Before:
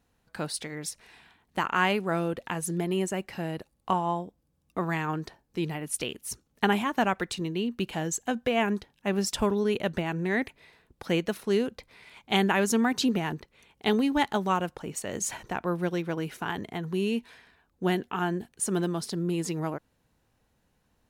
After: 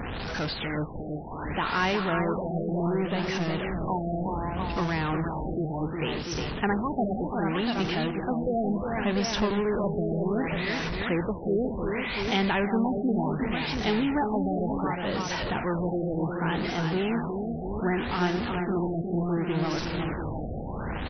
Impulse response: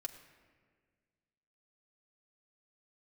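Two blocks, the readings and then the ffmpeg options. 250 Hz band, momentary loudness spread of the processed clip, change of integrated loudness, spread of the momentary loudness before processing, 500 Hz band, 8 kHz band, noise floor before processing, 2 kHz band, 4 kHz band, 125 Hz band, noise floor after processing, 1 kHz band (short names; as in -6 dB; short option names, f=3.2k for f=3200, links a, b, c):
+2.0 dB, 5 LU, +1.0 dB, 11 LU, +1.5 dB, -11.5 dB, -72 dBFS, +0.5 dB, +0.5 dB, +4.0 dB, -34 dBFS, +0.5 dB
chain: -af "aeval=exprs='val(0)+0.5*0.0794*sgn(val(0))':c=same,aecho=1:1:228|359|691:0.126|0.531|0.422,afftfilt=real='re*lt(b*sr/1024,770*pow(6200/770,0.5+0.5*sin(2*PI*0.67*pts/sr)))':imag='im*lt(b*sr/1024,770*pow(6200/770,0.5+0.5*sin(2*PI*0.67*pts/sr)))':win_size=1024:overlap=0.75,volume=-5dB"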